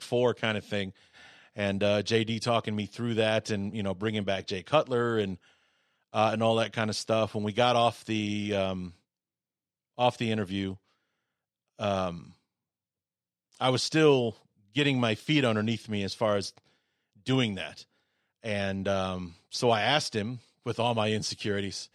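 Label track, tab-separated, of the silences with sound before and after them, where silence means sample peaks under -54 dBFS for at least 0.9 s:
8.960000	9.980000	silence
10.770000	11.790000	silence
12.340000	13.520000	silence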